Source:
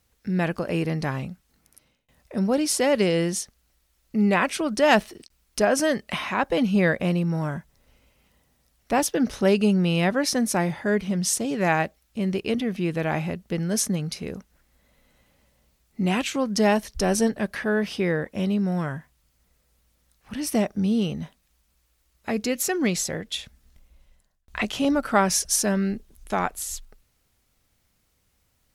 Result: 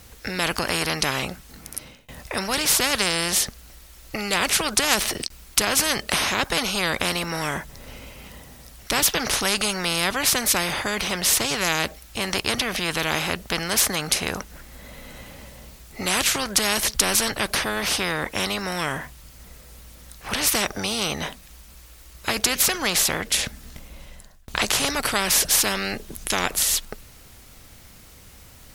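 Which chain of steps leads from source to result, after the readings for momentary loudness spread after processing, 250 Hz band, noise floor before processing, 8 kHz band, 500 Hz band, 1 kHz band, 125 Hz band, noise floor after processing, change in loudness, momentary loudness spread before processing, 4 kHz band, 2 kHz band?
14 LU, −7.5 dB, −69 dBFS, +7.5 dB, −4.5 dB, +1.0 dB, −6.5 dB, −47 dBFS, +2.0 dB, 12 LU, +10.5 dB, +5.0 dB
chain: every bin compressed towards the loudest bin 4 to 1
level +4 dB

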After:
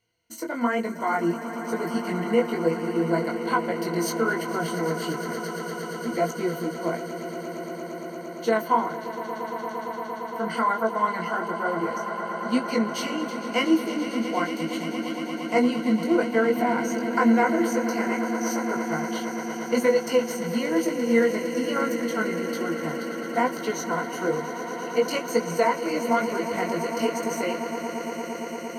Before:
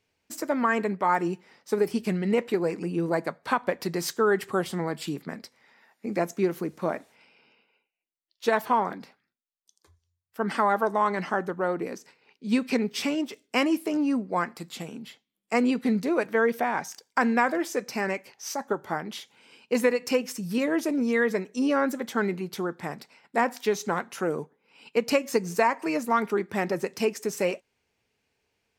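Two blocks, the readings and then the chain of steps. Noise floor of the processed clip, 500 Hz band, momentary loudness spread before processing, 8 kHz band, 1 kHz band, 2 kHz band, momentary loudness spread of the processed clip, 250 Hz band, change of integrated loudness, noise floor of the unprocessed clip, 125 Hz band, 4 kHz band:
−35 dBFS, +2.0 dB, 12 LU, +3.0 dB, +2.0 dB, +1.0 dB, 10 LU, +2.5 dB, +1.0 dB, −80 dBFS, +1.0 dB, +2.5 dB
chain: EQ curve with evenly spaced ripples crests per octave 1.9, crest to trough 15 dB
chorus effect 1.1 Hz, delay 18 ms, depth 5.4 ms
echo that builds up and dies away 115 ms, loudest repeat 8, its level −14.5 dB

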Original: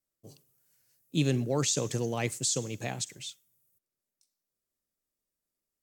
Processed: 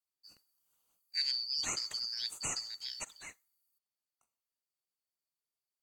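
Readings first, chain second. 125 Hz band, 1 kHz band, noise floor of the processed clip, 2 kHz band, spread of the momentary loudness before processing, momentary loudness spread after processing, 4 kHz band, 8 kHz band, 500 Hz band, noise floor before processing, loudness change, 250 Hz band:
−28.0 dB, −10.0 dB, below −85 dBFS, −6.0 dB, 9 LU, 12 LU, +3.0 dB, −7.5 dB, −24.5 dB, below −85 dBFS, −4.5 dB, −25.5 dB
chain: band-splitting scrambler in four parts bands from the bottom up 4321
level −7.5 dB

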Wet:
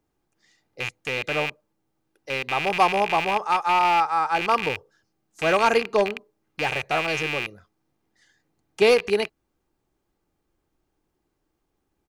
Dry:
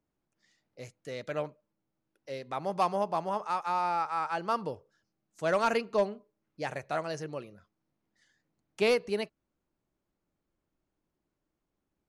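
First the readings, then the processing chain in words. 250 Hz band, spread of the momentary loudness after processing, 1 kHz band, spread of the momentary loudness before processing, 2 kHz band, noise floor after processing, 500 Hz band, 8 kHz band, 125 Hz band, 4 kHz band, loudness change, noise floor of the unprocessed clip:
+6.0 dB, 12 LU, +9.5 dB, 15 LU, +13.5 dB, −76 dBFS, +7.5 dB, +9.5 dB, +6.5 dB, +13.0 dB, +9.0 dB, −85 dBFS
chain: loose part that buzzes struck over −49 dBFS, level −23 dBFS
parametric band 880 Hz +2.5 dB 0.23 octaves
comb filter 2.5 ms, depth 31%
level +7.5 dB

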